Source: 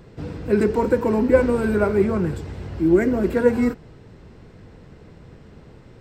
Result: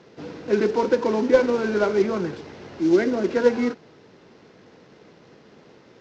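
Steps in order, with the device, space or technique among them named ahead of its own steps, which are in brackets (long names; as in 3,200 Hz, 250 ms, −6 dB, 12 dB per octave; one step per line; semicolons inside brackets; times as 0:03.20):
early wireless headset (high-pass filter 260 Hz 12 dB per octave; variable-slope delta modulation 32 kbit/s)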